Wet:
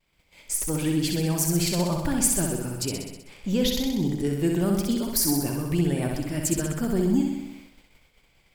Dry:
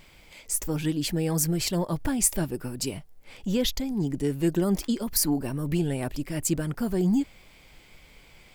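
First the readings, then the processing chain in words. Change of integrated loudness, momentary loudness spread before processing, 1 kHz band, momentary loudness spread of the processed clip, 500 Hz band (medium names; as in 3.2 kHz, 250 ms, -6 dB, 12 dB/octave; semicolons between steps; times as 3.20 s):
+2.0 dB, 8 LU, +2.5 dB, 7 LU, +2.0 dB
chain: flutter echo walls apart 10.9 m, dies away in 1 s; expander -41 dBFS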